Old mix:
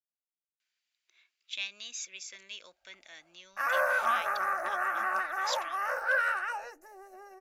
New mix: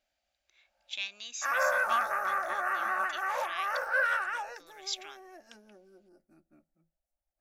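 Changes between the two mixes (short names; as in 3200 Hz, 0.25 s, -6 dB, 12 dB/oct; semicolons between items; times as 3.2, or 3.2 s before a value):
speech: entry -0.60 s; background: entry -2.15 s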